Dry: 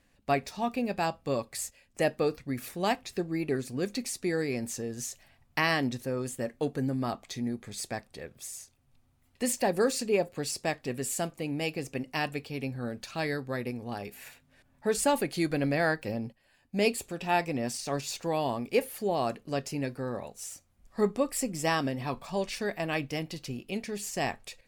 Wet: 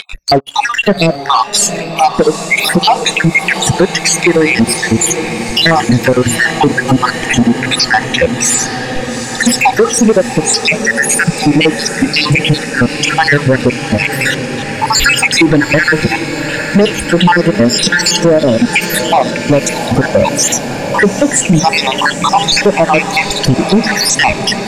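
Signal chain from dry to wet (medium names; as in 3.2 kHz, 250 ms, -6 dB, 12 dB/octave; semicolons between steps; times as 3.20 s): random holes in the spectrogram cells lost 73%; band-stop 1.1 kHz, Q 18; reverberation RT60 0.90 s, pre-delay 3 ms, DRR 18.5 dB; compression 12:1, threshold -39 dBFS, peak gain reduction 18 dB; spectral noise reduction 27 dB; upward compressor, threshold -53 dBFS; waveshaping leveller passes 3; distance through air 71 m; echo that smears into a reverb 808 ms, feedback 73%, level -14.5 dB; loudness maximiser +33 dB; trim -1 dB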